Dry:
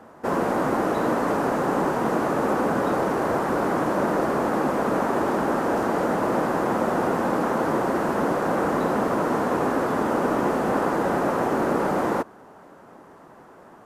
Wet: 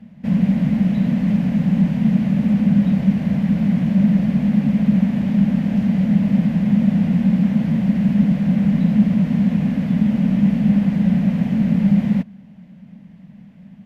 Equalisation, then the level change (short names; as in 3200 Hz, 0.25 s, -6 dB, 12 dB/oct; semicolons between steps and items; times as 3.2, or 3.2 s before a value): EQ curve 120 Hz 0 dB, 200 Hz +13 dB, 360 Hz -29 dB, 590 Hz -18 dB, 910 Hz -26 dB, 1300 Hz -29 dB, 2100 Hz -7 dB, 3100 Hz -6 dB, 8500 Hz -23 dB, 14000 Hz -19 dB; +8.0 dB